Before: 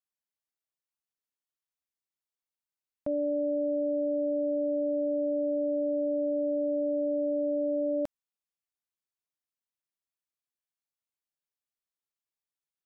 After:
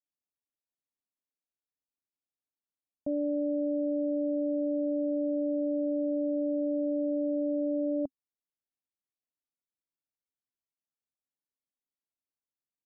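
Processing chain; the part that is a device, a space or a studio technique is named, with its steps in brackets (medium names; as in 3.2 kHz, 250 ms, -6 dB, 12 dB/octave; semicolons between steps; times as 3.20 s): under water (low-pass 790 Hz 24 dB/octave; peaking EQ 270 Hz +8 dB 0.4 oct); trim -3.5 dB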